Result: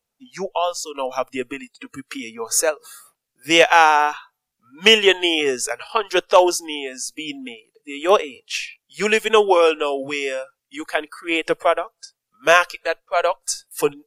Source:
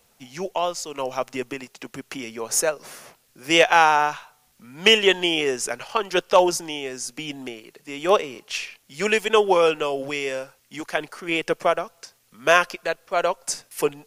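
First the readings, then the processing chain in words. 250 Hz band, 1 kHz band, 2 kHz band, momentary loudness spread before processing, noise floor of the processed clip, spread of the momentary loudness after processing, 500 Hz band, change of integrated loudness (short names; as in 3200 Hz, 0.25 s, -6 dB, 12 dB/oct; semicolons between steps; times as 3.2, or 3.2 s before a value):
+2.5 dB, +3.0 dB, +3.0 dB, 19 LU, -81 dBFS, 20 LU, +3.0 dB, +3.0 dB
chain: spectral noise reduction 22 dB; gain +3 dB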